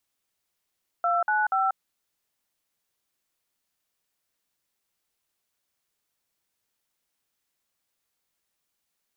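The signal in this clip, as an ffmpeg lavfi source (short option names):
-f lavfi -i "aevalsrc='0.0668*clip(min(mod(t,0.24),0.188-mod(t,0.24))/0.002,0,1)*(eq(floor(t/0.24),0)*(sin(2*PI*697*mod(t,0.24))+sin(2*PI*1336*mod(t,0.24)))+eq(floor(t/0.24),1)*(sin(2*PI*852*mod(t,0.24))+sin(2*PI*1477*mod(t,0.24)))+eq(floor(t/0.24),2)*(sin(2*PI*770*mod(t,0.24))+sin(2*PI*1336*mod(t,0.24))))':d=0.72:s=44100"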